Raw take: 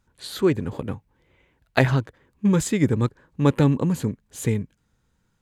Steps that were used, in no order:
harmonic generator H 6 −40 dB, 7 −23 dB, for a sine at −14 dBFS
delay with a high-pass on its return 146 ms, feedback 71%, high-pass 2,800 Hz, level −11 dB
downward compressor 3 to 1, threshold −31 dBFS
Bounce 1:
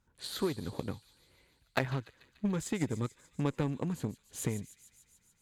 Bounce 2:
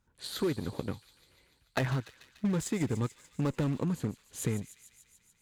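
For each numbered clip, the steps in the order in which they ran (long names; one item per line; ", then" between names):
downward compressor, then delay with a high-pass on its return, then harmonic generator
harmonic generator, then downward compressor, then delay with a high-pass on its return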